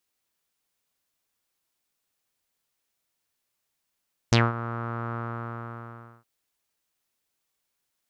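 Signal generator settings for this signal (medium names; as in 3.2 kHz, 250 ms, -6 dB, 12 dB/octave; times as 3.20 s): synth note saw A#2 12 dB/octave, low-pass 1.3 kHz, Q 5.2, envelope 2.5 oct, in 0.10 s, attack 3.3 ms, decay 0.20 s, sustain -16 dB, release 1.10 s, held 0.82 s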